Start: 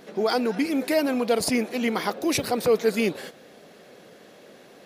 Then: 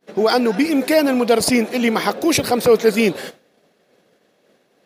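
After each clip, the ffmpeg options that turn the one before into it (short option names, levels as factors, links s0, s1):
-af "agate=range=0.0224:threshold=0.0141:ratio=3:detection=peak,volume=2.37"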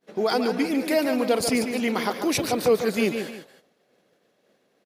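-af "aecho=1:1:143|305:0.398|0.15,volume=0.422"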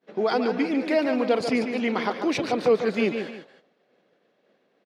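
-af "highpass=150,lowpass=3600"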